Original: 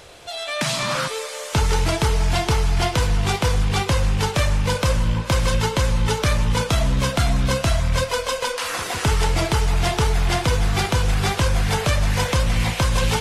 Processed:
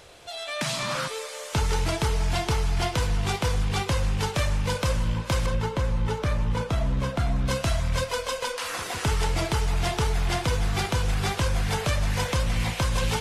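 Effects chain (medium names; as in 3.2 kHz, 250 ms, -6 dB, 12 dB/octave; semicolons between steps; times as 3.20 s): 5.46–7.48 s: treble shelf 2.5 kHz -11.5 dB; trim -5.5 dB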